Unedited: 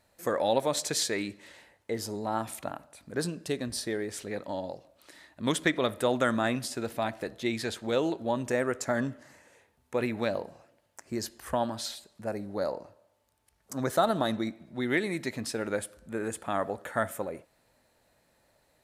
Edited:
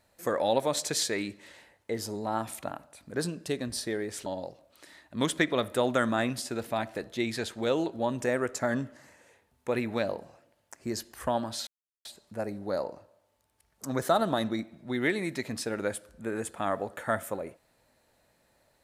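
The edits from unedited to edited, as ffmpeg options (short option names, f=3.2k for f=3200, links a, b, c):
-filter_complex "[0:a]asplit=3[a][b][c];[a]atrim=end=4.262[d];[b]atrim=start=4.518:end=11.93,asetpts=PTS-STARTPTS,afade=t=out:st=7.408:d=0.004:c=hsin,apad=pad_dur=0.38[e];[c]atrim=start=11.93,asetpts=PTS-STARTPTS,afade=t=in:d=0.004:c=hsin[f];[e][f]concat=n=2:v=0:a=1[g];[d][g]acrossfade=d=0.004:c1=hsin:c2=hsin"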